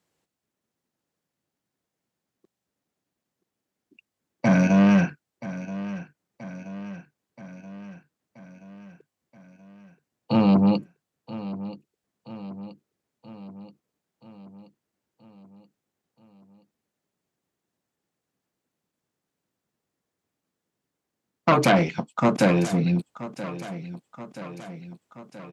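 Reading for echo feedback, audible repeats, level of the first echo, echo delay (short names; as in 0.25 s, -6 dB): 59%, 5, -15.0 dB, 0.978 s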